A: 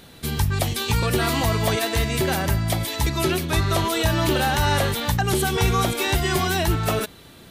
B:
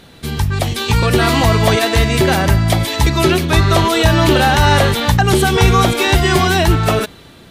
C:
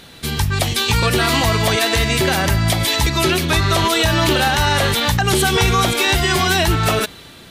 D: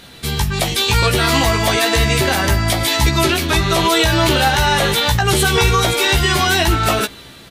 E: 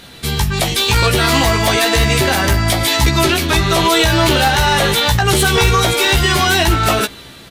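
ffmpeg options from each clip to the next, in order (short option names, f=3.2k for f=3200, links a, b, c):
-af "highshelf=f=9.2k:g=-10.5,dynaudnorm=f=250:g=7:m=5dB,volume=4.5dB"
-af "tiltshelf=f=1.3k:g=-3.5,alimiter=limit=-8dB:level=0:latency=1:release=135,volume=1.5dB"
-filter_complex "[0:a]asplit=2[a][b];[b]adelay=15,volume=-5dB[c];[a][c]amix=inputs=2:normalize=0"
-af "aeval=exprs='clip(val(0),-1,0.299)':c=same,volume=2dB"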